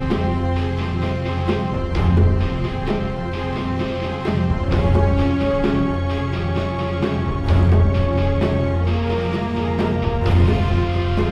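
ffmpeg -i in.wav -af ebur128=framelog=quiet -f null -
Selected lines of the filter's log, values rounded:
Integrated loudness:
  I:         -19.9 LUFS
  Threshold: -29.9 LUFS
Loudness range:
  LRA:         2.0 LU
  Threshold: -39.9 LUFS
  LRA low:   -21.1 LUFS
  LRA high:  -19.0 LUFS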